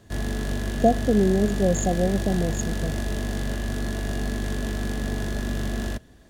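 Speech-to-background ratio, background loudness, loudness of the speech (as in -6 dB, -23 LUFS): 5.0 dB, -29.0 LUFS, -24.0 LUFS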